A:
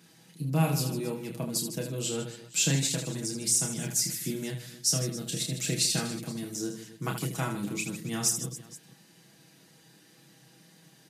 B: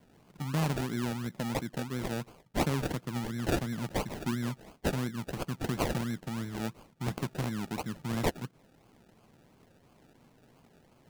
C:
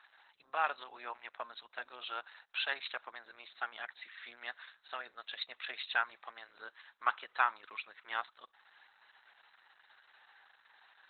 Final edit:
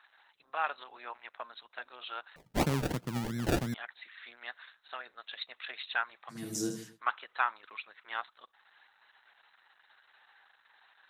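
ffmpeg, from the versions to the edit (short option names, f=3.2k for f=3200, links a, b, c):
-filter_complex "[2:a]asplit=3[a][b][c];[a]atrim=end=2.362[d];[1:a]atrim=start=2.358:end=3.742[e];[b]atrim=start=3.738:end=6.52[f];[0:a]atrim=start=6.28:end=7.01[g];[c]atrim=start=6.77[h];[d][e]acrossfade=d=0.004:c1=hsin:c2=hsin[i];[i][f]acrossfade=d=0.004:c1=hsin:c2=hsin[j];[j][g]acrossfade=d=0.24:c1=tri:c2=tri[k];[k][h]acrossfade=d=0.24:c1=tri:c2=tri"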